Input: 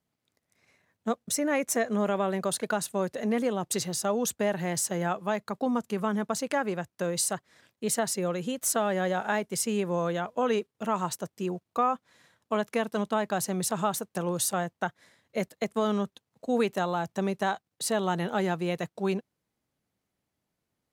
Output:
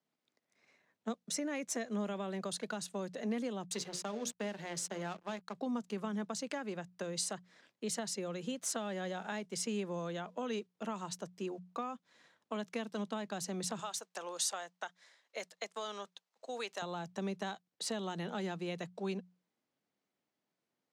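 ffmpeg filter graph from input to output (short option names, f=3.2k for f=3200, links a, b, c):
-filter_complex "[0:a]asettb=1/sr,asplit=3[a][b][c];[a]atrim=end=3.664[d];[b]atrim=start=3.66:end=5.54,asetpts=PTS-STARTPTS,afade=t=in:d=0.004:c=qsin,afade=t=out:st=1.876:d=0.004:c=qsin,bandreject=f=60:t=h:w=6,bandreject=f=120:t=h:w=6,bandreject=f=180:t=h:w=6,bandreject=f=240:t=h:w=6,bandreject=f=300:t=h:w=6,bandreject=f=360:t=h:w=6,bandreject=f=420:t=h:w=6,bandreject=f=480:t=h:w=6,bandreject=f=540:t=h:w=6,bandreject=f=600:t=h:w=6,aeval=exprs='sgn(val(0))*max(abs(val(0))-0.00841,0)':c=same[e];[c]atrim=start=5.536[f];[d][e]acrossfade=d=0.004:c1=hsin:c2=qsin[g];[g][f]acrossfade=d=0.004:c1=qsin:c2=hsin,asettb=1/sr,asplit=3[h][i][j];[h]atrim=end=13.794[k];[i]atrim=start=13.79:end=16.82,asetpts=PTS-STARTPTS,afade=t=in:d=0.004:c=qsin,afade=t=out:st=3.026:d=0.004:c=qsin,highpass=630,equalizer=f=6.2k:w=0.79:g=4.5[l];[j]atrim=start=16.816[m];[k][l]acrossfade=d=0.004:c1=hsin:c2=qsin[n];[n][m]acrossfade=d=0.004:c1=qsin:c2=hsin,acrossover=split=160 7600:gain=0.0794 1 0.126[o][p][q];[o][p][q]amix=inputs=3:normalize=0,bandreject=f=60:t=h:w=6,bandreject=f=120:t=h:w=6,bandreject=f=180:t=h:w=6,acrossover=split=240|3000[r][s][t];[s]acompressor=threshold=-37dB:ratio=4[u];[r][u][t]amix=inputs=3:normalize=0,volume=-3.5dB"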